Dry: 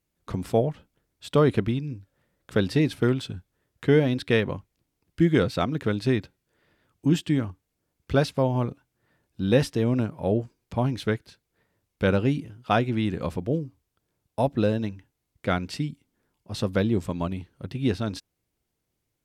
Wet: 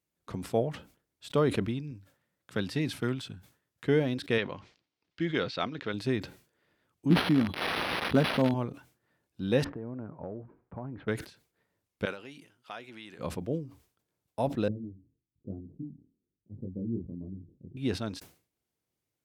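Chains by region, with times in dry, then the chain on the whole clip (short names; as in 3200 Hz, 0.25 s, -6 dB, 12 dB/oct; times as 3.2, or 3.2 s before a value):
1.91–3.85 HPF 79 Hz + bell 450 Hz -5 dB 1.3 oct
4.38–5.94 LPF 4800 Hz 24 dB/oct + tilt +2.5 dB/oct
7.1–8.54 switching spikes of -17 dBFS + small resonant body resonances 220/4000 Hz, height 14 dB, ringing for 50 ms + decimation joined by straight lines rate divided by 6×
9.64–11.08 LPF 1500 Hz 24 dB/oct + compressor 12:1, threshold -28 dBFS
12.05–13.19 HPF 1300 Hz 6 dB/oct + compressor 2:1, threshold -38 dBFS
14.68–17.77 inverse Chebyshev low-pass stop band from 2100 Hz, stop band 80 dB + chorus 1.1 Hz, delay 19.5 ms, depth 6.7 ms
whole clip: HPF 120 Hz 6 dB/oct; sustainer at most 140 dB/s; gain -5.5 dB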